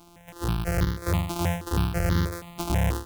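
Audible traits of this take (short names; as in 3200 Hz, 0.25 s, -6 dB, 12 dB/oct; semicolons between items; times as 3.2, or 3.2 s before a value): a buzz of ramps at a fixed pitch in blocks of 256 samples; notches that jump at a steady rate 6.2 Hz 490–2500 Hz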